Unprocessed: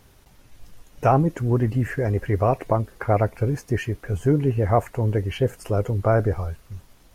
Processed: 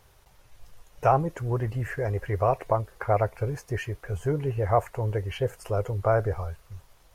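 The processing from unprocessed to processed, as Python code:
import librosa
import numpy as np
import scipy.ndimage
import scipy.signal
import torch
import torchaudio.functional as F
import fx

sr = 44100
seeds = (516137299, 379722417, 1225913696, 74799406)

y = fx.graphic_eq(x, sr, hz=(250, 500, 1000), db=(-12, 3, 3))
y = y * 10.0 ** (-4.0 / 20.0)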